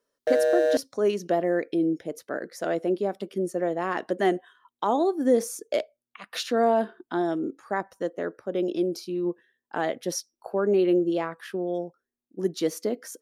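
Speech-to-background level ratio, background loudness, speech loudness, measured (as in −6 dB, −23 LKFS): −3.0 dB, −24.5 LKFS, −27.5 LKFS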